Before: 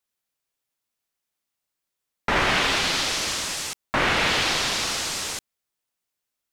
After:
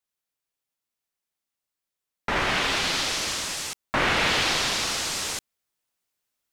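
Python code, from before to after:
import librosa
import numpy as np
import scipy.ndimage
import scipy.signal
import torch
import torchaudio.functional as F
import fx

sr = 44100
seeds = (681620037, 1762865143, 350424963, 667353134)

y = fx.rider(x, sr, range_db=10, speed_s=2.0)
y = F.gain(torch.from_numpy(y), -2.0).numpy()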